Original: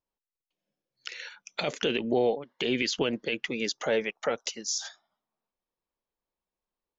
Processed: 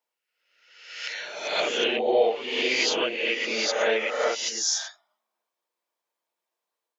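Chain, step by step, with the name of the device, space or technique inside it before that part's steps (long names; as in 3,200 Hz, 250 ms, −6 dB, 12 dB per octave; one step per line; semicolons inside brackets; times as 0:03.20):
ghost voice (reversed playback; convolution reverb RT60 1.0 s, pre-delay 6 ms, DRR −6.5 dB; reversed playback; high-pass filter 500 Hz 12 dB per octave)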